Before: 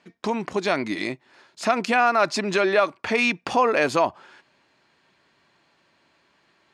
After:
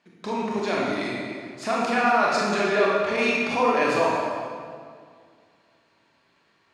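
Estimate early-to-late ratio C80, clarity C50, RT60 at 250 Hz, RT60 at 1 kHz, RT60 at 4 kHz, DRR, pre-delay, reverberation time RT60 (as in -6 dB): 0.5 dB, -2.0 dB, 2.3 s, 2.0 s, 1.5 s, -5.0 dB, 23 ms, 2.0 s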